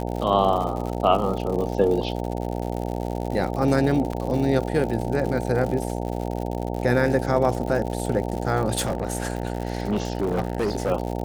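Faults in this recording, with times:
buzz 60 Hz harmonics 15 -28 dBFS
crackle 120 per s -29 dBFS
4.13 s: dropout 3.6 ms
8.75–10.92 s: clipped -19 dBFS

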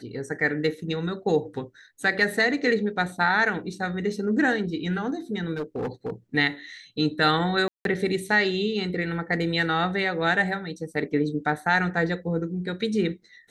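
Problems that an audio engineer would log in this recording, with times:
5.55–6.10 s: clipped -25 dBFS
7.68–7.85 s: dropout 172 ms

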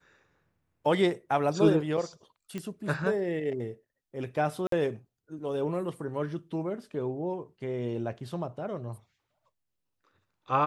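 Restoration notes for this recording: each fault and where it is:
2.58 s: pop -22 dBFS
4.67–4.72 s: dropout 53 ms

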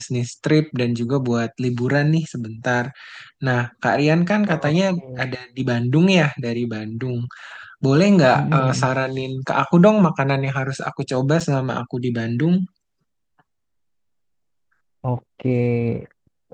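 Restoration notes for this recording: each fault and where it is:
11.40–11.41 s: dropout 5.2 ms

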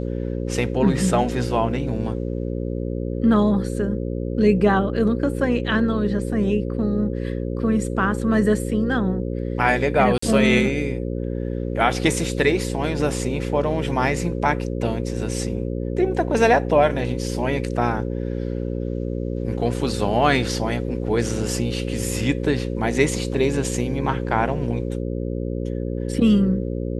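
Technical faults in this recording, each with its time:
buzz 60 Hz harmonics 9 -26 dBFS
10.18–10.22 s: dropout 44 ms

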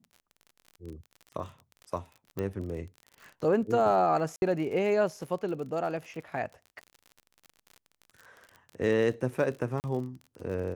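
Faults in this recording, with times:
crackle 47 per s -39 dBFS
2.39 s: pop -21 dBFS
4.36–4.42 s: dropout 61 ms
9.80–9.84 s: dropout 39 ms

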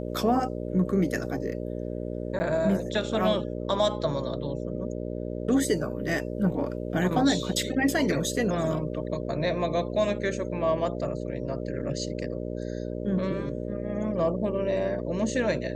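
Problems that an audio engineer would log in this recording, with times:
buzz 60 Hz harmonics 10 -33 dBFS
2.39–2.40 s: dropout 10 ms

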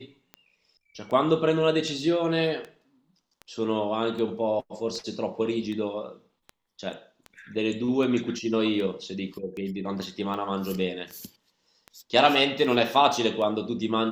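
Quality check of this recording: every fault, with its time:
tick 78 rpm -25 dBFS

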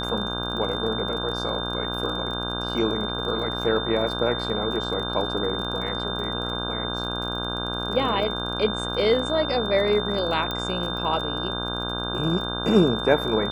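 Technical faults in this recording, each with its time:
buzz 60 Hz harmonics 27 -31 dBFS
crackle 33 per s -32 dBFS
whine 3.6 kHz -30 dBFS
10.51 s: pop -14 dBFS

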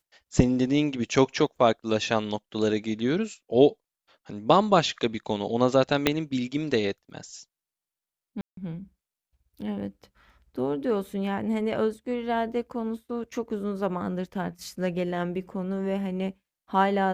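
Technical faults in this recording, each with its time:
6.07 s: pop -5 dBFS
8.41–8.57 s: dropout 163 ms

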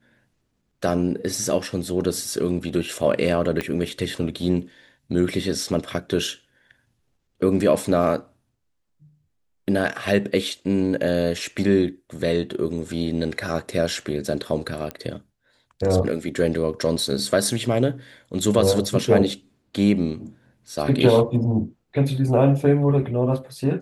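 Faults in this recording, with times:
3.61 s: pop -12 dBFS
14.91 s: pop -15 dBFS

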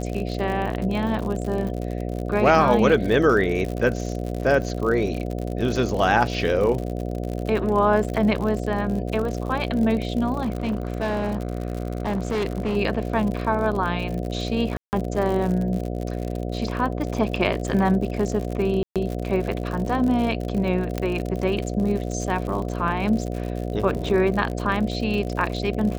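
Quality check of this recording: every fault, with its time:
buzz 60 Hz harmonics 12 -28 dBFS
crackle 73 per s -28 dBFS
10.41–12.77 s: clipped -20.5 dBFS
14.77–14.93 s: dropout 159 ms
18.83–18.96 s: dropout 127 ms
20.98 s: pop -11 dBFS

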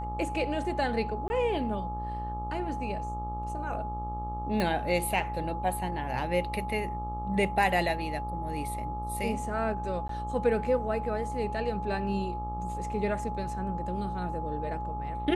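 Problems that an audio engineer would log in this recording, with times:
buzz 60 Hz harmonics 22 -37 dBFS
whine 840 Hz -35 dBFS
1.28–1.30 s: dropout 20 ms
4.60 s: pop -16 dBFS
10.08–10.09 s: dropout 13 ms

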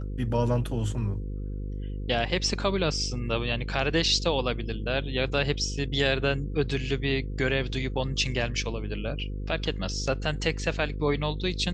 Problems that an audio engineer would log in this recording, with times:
buzz 50 Hz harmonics 10 -33 dBFS

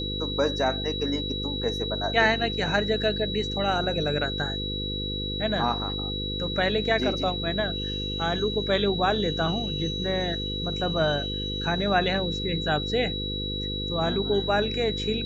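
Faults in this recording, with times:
buzz 50 Hz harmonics 10 -33 dBFS
whine 3.9 kHz -31 dBFS

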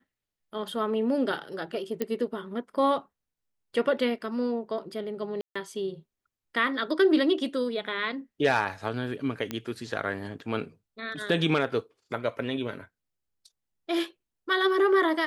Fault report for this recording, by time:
2.02 s: pop -15 dBFS
5.41–5.55 s: dropout 145 ms
9.51 s: pop -17 dBFS

